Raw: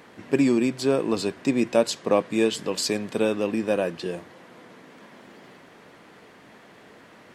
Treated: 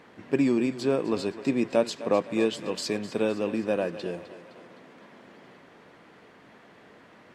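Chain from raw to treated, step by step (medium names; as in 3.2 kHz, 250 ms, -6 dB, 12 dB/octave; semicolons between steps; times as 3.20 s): treble shelf 6.5 kHz -10 dB; thinning echo 257 ms, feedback 56%, high-pass 270 Hz, level -14 dB; trim -3 dB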